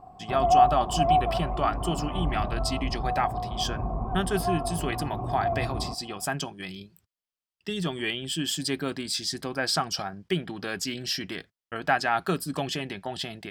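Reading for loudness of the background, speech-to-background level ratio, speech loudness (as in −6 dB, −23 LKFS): −28.5 LKFS, −1.5 dB, −30.0 LKFS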